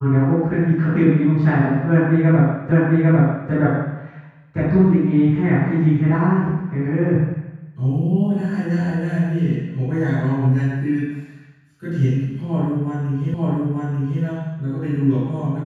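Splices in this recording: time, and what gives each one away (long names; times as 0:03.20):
0:02.72: the same again, the last 0.8 s
0:13.34: the same again, the last 0.89 s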